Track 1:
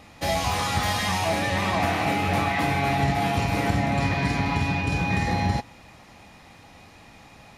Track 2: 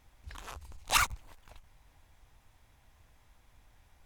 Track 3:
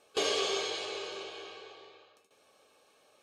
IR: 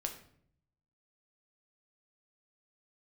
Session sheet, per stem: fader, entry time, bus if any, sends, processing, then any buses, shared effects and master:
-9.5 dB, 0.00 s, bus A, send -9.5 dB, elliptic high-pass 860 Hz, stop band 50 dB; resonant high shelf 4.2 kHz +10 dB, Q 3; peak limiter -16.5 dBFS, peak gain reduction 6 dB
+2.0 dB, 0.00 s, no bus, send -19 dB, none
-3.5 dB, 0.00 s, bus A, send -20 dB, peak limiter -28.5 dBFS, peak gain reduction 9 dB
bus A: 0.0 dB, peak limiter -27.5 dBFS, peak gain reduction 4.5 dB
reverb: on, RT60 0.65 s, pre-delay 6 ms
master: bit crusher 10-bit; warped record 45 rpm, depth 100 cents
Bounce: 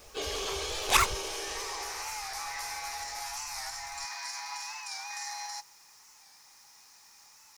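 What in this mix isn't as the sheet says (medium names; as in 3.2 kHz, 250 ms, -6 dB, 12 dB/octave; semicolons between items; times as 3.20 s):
stem 1: send off; stem 3 -3.5 dB -> +7.0 dB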